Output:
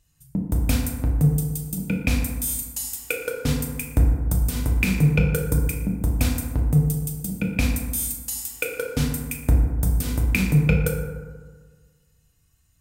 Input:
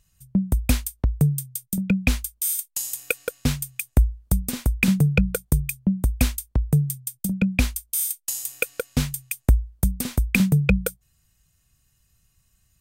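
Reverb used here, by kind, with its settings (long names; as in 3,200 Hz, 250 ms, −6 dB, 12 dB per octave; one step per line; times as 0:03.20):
feedback delay network reverb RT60 1.5 s, low-frequency decay 1.1×, high-frequency decay 0.4×, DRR −2 dB
level −3.5 dB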